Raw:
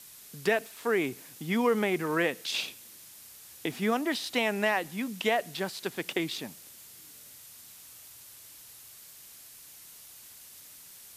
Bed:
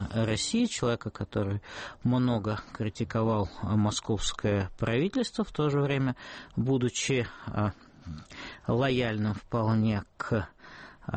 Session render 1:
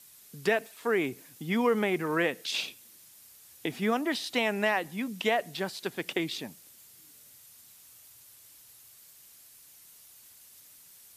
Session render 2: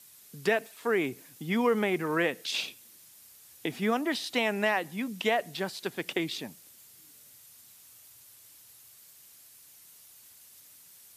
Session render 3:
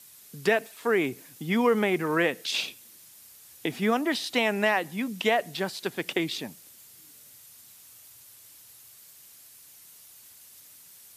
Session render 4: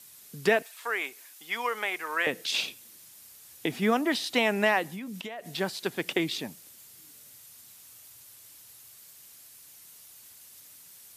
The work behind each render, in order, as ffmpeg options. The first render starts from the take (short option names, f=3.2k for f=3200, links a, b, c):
-af "afftdn=nr=6:nf=-51"
-af "highpass=47"
-af "volume=3dB"
-filter_complex "[0:a]asettb=1/sr,asplit=3[a][b][c];[a]atrim=end=0.624[d];[b]atrim=start=0.62:end=2.27,asetpts=PTS-STARTPTS,afade=t=in:d=0.004:c=qsin,afade=t=out:st=1.646:d=0.004:c=qsin,highpass=920[e];[c]atrim=start=2.266[f];[d][e]acrossfade=d=0.004:c1=hsin:c2=qsin[g];[g][f]acrossfade=d=0.004:c1=qsin:c2=hsin,asettb=1/sr,asplit=3[h][i][j];[h]atrim=end=4.834[k];[i]atrim=start=4.83:end=5.52,asetpts=PTS-STARTPTS,afade=t=in:d=0.004:c=qsin,afade=t=out:st=0.686:d=0.004:c=qsin,acompressor=threshold=-34dB:ratio=20:attack=3.2:release=140:knee=1:detection=peak[l];[j]atrim=start=5.516[m];[k][l]acrossfade=d=0.004:c1=hsin:c2=qsin[n];[n][m]acrossfade=d=0.004:c1=qsin:c2=hsin"